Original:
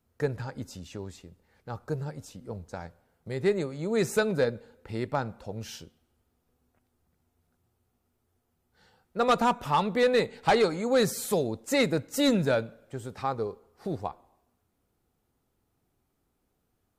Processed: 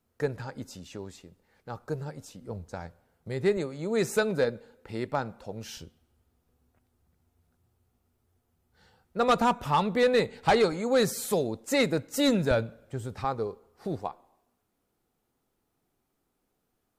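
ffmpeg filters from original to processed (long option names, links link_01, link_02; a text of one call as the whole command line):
ffmpeg -i in.wav -af "asetnsamples=nb_out_samples=441:pad=0,asendcmd='2.42 equalizer g 1.5;3.57 equalizer g -6;5.77 equalizer g 5;10.72 equalizer g -3;12.51 equalizer g 8;13.24 equalizer g -0.5;13.99 equalizer g -9.5',equalizer=frequency=70:width_type=o:width=1.8:gain=-6" out.wav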